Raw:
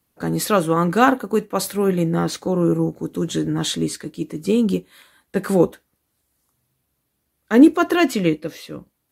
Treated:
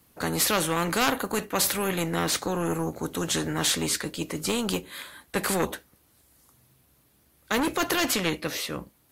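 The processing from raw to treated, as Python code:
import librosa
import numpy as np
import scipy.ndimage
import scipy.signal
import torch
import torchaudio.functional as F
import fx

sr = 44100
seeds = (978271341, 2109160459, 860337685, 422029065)

y = 10.0 ** (-8.5 / 20.0) * np.tanh(x / 10.0 ** (-8.5 / 20.0))
y = fx.spectral_comp(y, sr, ratio=2.0)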